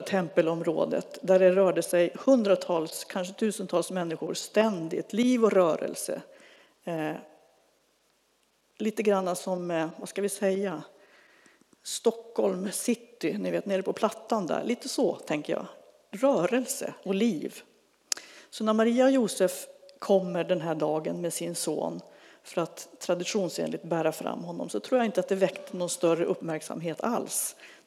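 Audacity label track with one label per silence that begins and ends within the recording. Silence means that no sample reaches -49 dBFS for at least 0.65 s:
7.380000	8.430000	silence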